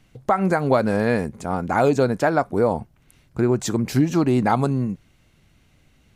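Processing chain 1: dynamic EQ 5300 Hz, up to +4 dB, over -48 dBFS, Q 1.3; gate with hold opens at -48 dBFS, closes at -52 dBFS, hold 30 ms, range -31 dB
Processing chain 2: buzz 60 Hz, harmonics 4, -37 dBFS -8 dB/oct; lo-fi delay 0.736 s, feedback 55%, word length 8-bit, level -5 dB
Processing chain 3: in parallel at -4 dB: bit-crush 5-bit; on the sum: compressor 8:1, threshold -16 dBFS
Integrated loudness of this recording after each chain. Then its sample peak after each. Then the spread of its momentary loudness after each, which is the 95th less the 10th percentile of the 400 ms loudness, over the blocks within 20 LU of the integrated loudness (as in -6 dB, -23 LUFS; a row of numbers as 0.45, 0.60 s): -21.0, -20.5, -22.0 LUFS; -6.5, -3.0, -4.0 dBFS; 8, 6, 5 LU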